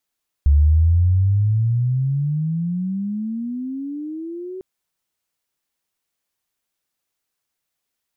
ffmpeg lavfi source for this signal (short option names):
-f lavfi -i "aevalsrc='pow(10,(-9.5-19*t/4.15)/20)*sin(2*PI*70*4.15/log(380/70)*(exp(log(380/70)*t/4.15)-1))':d=4.15:s=44100"